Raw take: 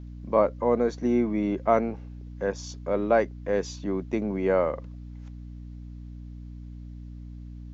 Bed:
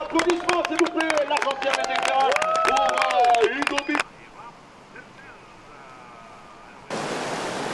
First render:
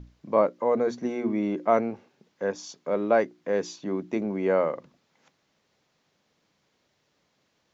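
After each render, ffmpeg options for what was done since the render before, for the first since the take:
-af "bandreject=f=60:t=h:w=6,bandreject=f=120:t=h:w=6,bandreject=f=180:t=h:w=6,bandreject=f=240:t=h:w=6,bandreject=f=300:t=h:w=6,bandreject=f=360:t=h:w=6"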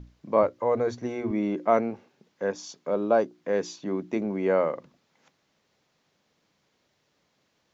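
-filter_complex "[0:a]asettb=1/sr,asplit=3[a][b][c];[a]atrim=end=0.434[d];[b]atrim=start=0.43:end=1.31,asetpts=PTS-STARTPTS,afade=t=in:d=0.004:c=qsin,afade=t=out:st=0.876:d=0.004:c=qsin,lowshelf=f=130:t=q:w=3:g=10[e];[c]atrim=start=1.306[f];[d][e]acrossfade=d=0.004:c1=hsin:c2=qsin[g];[g][f]acrossfade=d=0.004:c1=qsin:c2=hsin,asettb=1/sr,asplit=3[h][i][j];[h]atrim=end=2.914[k];[i]atrim=start=2.91:end=3.33,asetpts=PTS-STARTPTS,afade=t=in:d=0.004:c=qsin,afade=t=out:st=0.416:d=0.004:c=qsin,equalizer=f=2k:t=o:w=0.42:g=-14.5[l];[j]atrim=start=3.326[m];[k][l]acrossfade=d=0.004:c1=hsin:c2=qsin[n];[n][m]acrossfade=d=0.004:c1=qsin:c2=hsin"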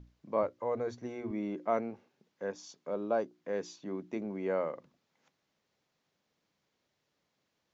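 -af "volume=-9dB"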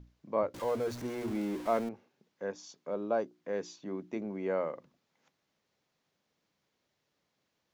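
-filter_complex "[0:a]asettb=1/sr,asplit=3[a][b][c];[a]atrim=end=0.544[d];[b]atrim=start=0.54:end=1.89,asetpts=PTS-STARTPTS,afade=t=in:d=0.004:c=qsin,afade=t=out:st=1.346:d=0.004:c=qsin,aeval=exprs='val(0)+0.5*0.0106*sgn(val(0))':c=same[e];[c]atrim=start=1.886[f];[d][e]acrossfade=d=0.004:c1=hsin:c2=qsin[g];[g][f]acrossfade=d=0.004:c1=qsin:c2=hsin"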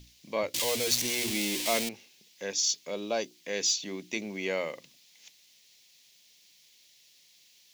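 -af "aexciter=amount=9.1:drive=7.8:freq=2.1k,asoftclip=type=tanh:threshold=-15dB"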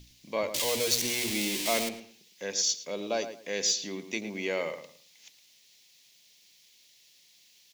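-filter_complex "[0:a]asplit=2[a][b];[b]adelay=109,lowpass=f=2.9k:p=1,volume=-10dB,asplit=2[c][d];[d]adelay=109,lowpass=f=2.9k:p=1,volume=0.25,asplit=2[e][f];[f]adelay=109,lowpass=f=2.9k:p=1,volume=0.25[g];[a][c][e][g]amix=inputs=4:normalize=0"

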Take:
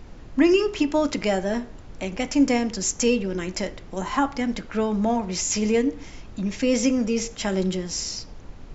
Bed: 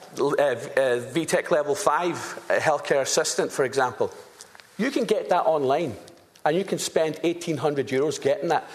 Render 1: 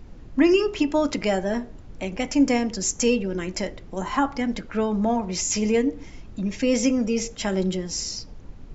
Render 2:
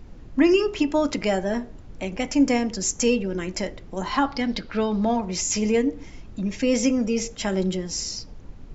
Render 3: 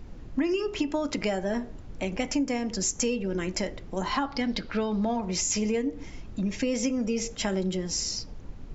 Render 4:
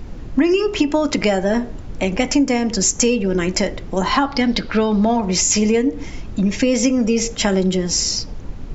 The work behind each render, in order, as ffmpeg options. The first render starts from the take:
-af "afftdn=nr=6:nf=-43"
-filter_complex "[0:a]asettb=1/sr,asplit=3[a][b][c];[a]atrim=end=4.034[d];[b]atrim=start=4.03:end=5.21,asetpts=PTS-STARTPTS,afade=t=in:d=0.004:c=qsin,afade=t=out:st=1.176:d=0.004:c=qsin,lowpass=f=4.5k:t=q:w=3.4[e];[c]atrim=start=5.206[f];[d][e]acrossfade=d=0.004:c1=hsin:c2=qsin[g];[g][f]acrossfade=d=0.004:c1=qsin:c2=hsin"
-af "acompressor=threshold=-24dB:ratio=6"
-af "volume=11dB"

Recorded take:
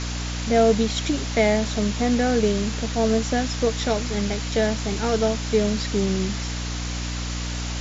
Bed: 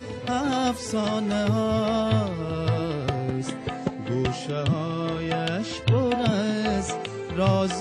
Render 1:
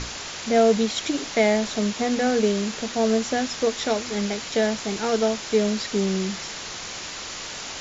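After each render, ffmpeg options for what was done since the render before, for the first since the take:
-af "bandreject=f=60:t=h:w=6,bandreject=f=120:t=h:w=6,bandreject=f=180:t=h:w=6,bandreject=f=240:t=h:w=6,bandreject=f=300:t=h:w=6"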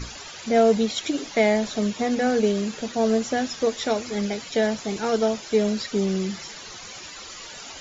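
-af "afftdn=nr=13:nf=-35"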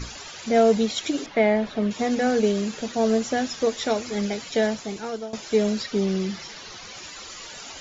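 -filter_complex "[0:a]asettb=1/sr,asplit=3[a][b][c];[a]atrim=end=1.264[d];[b]atrim=start=1.26:end=1.91,asetpts=PTS-STARTPTS,afade=t=in:d=0.004:c=qsin,afade=t=out:st=0.646:d=0.004:c=qsin,lowpass=2.7k[e];[c]atrim=start=1.906[f];[d][e]acrossfade=d=0.004:c1=hsin:c2=qsin[g];[g][f]acrossfade=d=0.004:c1=qsin:c2=hsin,asettb=1/sr,asplit=3[h][i][j];[h]atrim=end=5.834[k];[i]atrim=start=5.83:end=6.97,asetpts=PTS-STARTPTS,afade=t=in:d=0.004:c=qsin,afade=t=out:st=1.136:d=0.004:c=qsin,lowpass=f=6.3k:w=0.5412,lowpass=f=6.3k:w=1.3066[l];[j]atrim=start=6.966[m];[k][l]acrossfade=d=0.004:c1=hsin:c2=qsin[n];[n][m]acrossfade=d=0.004:c1=qsin:c2=hsin,asplit=2[o][p];[o]atrim=end=5.33,asetpts=PTS-STARTPTS,afade=t=out:st=4.63:d=0.7:silence=0.141254[q];[p]atrim=start=5.33,asetpts=PTS-STARTPTS,afade=t=in:d=0.004:c=hsin:silence=0.141254[r];[q][r]concat=n=2:v=0:a=1"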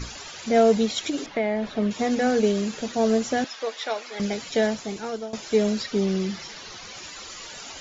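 -filter_complex "[0:a]asettb=1/sr,asplit=3[a][b][c];[a]atrim=end=1.034[d];[b]atrim=start=1.03:end=1.66,asetpts=PTS-STARTPTS,afade=t=in:d=0.004:c=qsin,afade=t=out:st=0.626:d=0.004:c=qsin,acompressor=threshold=-22dB:ratio=2.5:attack=3.2:release=140:knee=1:detection=peak[e];[c]atrim=start=1.656[f];[d][e]acrossfade=d=0.004:c1=hsin:c2=qsin[g];[g][f]acrossfade=d=0.004:c1=qsin:c2=hsin,asettb=1/sr,asplit=3[h][i][j];[h]atrim=end=3.444[k];[i]atrim=start=3.44:end=4.2,asetpts=PTS-STARTPTS,afade=t=in:d=0.004:c=qsin,afade=t=out:st=0.756:d=0.004:c=qsin,highpass=670,lowpass=4.4k[l];[j]atrim=start=4.196[m];[k][l]acrossfade=d=0.004:c1=hsin:c2=qsin[n];[n][m]acrossfade=d=0.004:c1=qsin:c2=hsin"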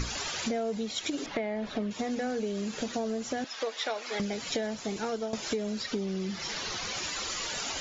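-filter_complex "[0:a]asplit=2[a][b];[b]alimiter=limit=-17.5dB:level=0:latency=1:release=24,volume=-1.5dB[c];[a][c]amix=inputs=2:normalize=0,acompressor=threshold=-29dB:ratio=12"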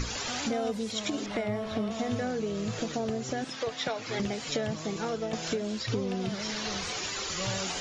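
-filter_complex "[1:a]volume=-14dB[a];[0:a][a]amix=inputs=2:normalize=0"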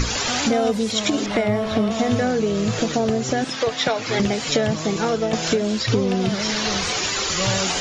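-af "volume=11dB"

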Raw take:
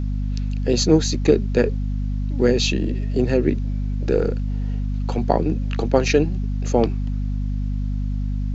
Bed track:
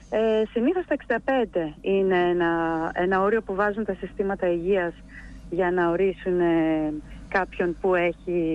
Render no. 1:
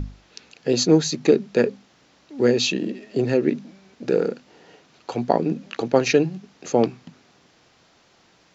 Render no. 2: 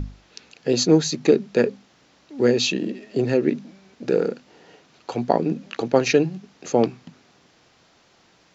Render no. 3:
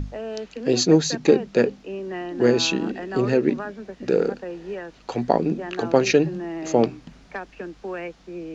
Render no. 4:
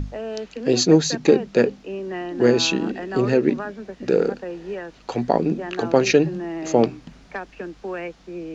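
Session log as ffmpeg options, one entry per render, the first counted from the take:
-af "bandreject=f=50:t=h:w=6,bandreject=f=100:t=h:w=6,bandreject=f=150:t=h:w=6,bandreject=f=200:t=h:w=6,bandreject=f=250:t=h:w=6"
-af anull
-filter_complex "[1:a]volume=-10dB[a];[0:a][a]amix=inputs=2:normalize=0"
-af "volume=1.5dB,alimiter=limit=-3dB:level=0:latency=1"

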